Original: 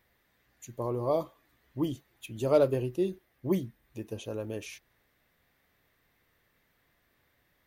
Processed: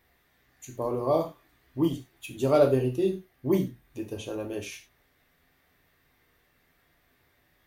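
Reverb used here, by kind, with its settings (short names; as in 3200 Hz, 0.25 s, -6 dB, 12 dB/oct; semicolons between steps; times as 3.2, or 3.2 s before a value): non-linear reverb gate 0.13 s falling, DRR 2 dB; gain +2 dB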